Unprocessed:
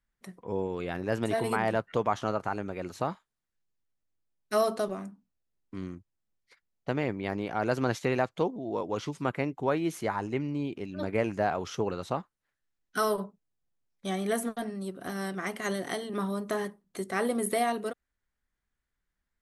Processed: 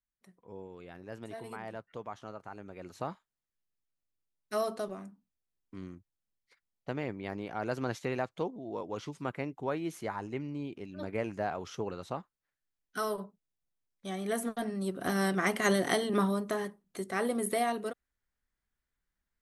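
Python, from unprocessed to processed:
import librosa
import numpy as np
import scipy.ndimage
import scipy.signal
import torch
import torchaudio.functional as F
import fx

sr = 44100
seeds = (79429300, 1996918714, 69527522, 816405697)

y = fx.gain(x, sr, db=fx.line((2.42, -14.5), (3.06, -6.0), (14.11, -6.0), (15.08, 5.0), (16.15, 5.0), (16.56, -2.5)))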